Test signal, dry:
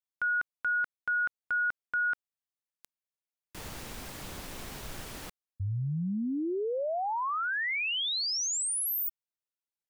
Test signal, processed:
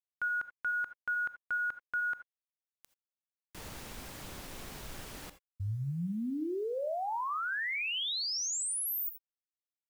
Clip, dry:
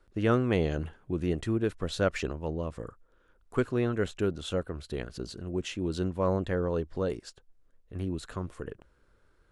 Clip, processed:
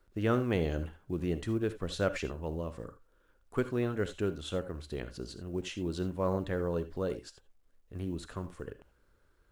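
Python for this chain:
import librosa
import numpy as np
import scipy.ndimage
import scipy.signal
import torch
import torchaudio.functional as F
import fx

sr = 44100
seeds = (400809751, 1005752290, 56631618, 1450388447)

y = fx.quant_companded(x, sr, bits=8)
y = fx.rev_gated(y, sr, seeds[0], gate_ms=100, shape='rising', drr_db=12.0)
y = y * 10.0 ** (-3.5 / 20.0)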